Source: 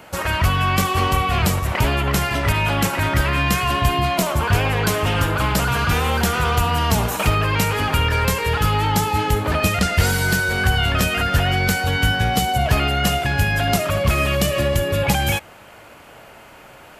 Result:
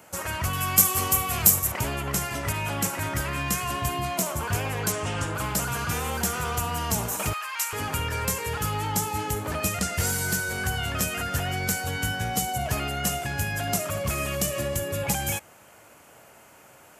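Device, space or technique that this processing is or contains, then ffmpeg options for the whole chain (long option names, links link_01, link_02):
budget condenser microphone: -filter_complex "[0:a]asettb=1/sr,asplit=3[link_01][link_02][link_03];[link_01]atrim=end=0.534[link_04];[link_02]atrim=start=0.53:end=1.72,asetpts=PTS-STARTPTS,afade=type=in:duration=0.004:curve=qsin,afade=type=out:start_time=1.186:duration=0.004:curve=qsin,aemphasis=mode=production:type=50fm[link_05];[link_03]atrim=start=1.716[link_06];[link_04][link_05]acrossfade=duration=0.004:curve1=hsin:curve2=qsin[link_07];[link_07][link_06]acrossfade=duration=0.004:curve1=qsin:curve2=hsin,asettb=1/sr,asplit=3[link_08][link_09][link_10];[link_08]atrim=end=4.924[link_11];[link_09]atrim=start=4.92:end=5.35,asetpts=PTS-STARTPTS,afade=type=in:duration=0.004:curve=qsin,afade=type=out:start_time=0.426:duration=0.004:curve=qsin,lowpass=frequency=9000:width=0.5412,lowpass=frequency=9000:width=1.3066[link_12];[link_10]atrim=start=5.346[link_13];[link_11][link_12]acrossfade=duration=0.004:curve1=hsin:curve2=qsin[link_14];[link_14][link_13]acrossfade=duration=0.004:curve1=qsin:curve2=hsin,highpass=75,highshelf=frequency=5200:width_type=q:width=1.5:gain=7.5,asettb=1/sr,asplit=3[link_15][link_16][link_17];[link_15]atrim=end=7.334[link_18];[link_16]atrim=start=7.33:end=7.73,asetpts=PTS-STARTPTS,afade=type=in:duration=0.004:curve=qsin,afade=type=out:start_time=0.396:duration=0.004:curve=qsin,highpass=frequency=940:width=0.5412,highpass=frequency=940:width=1.3066[link_19];[link_17]atrim=start=7.726[link_20];[link_18][link_19]acrossfade=duration=0.004:curve1=hsin:curve2=qsin[link_21];[link_21][link_20]acrossfade=duration=0.004:curve1=qsin:curve2=hsin,volume=-9dB"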